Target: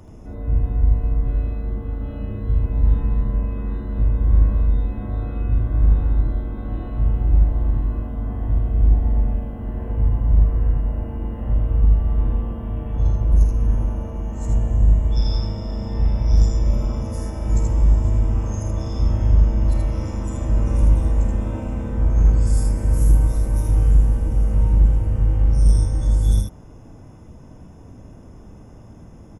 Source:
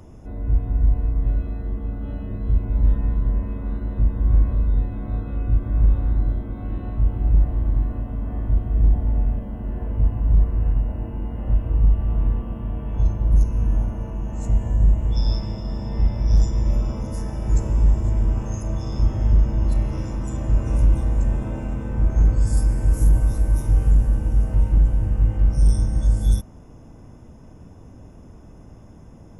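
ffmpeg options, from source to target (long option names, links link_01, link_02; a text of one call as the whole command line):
ffmpeg -i in.wav -af "aecho=1:1:50|79:0.282|0.708" out.wav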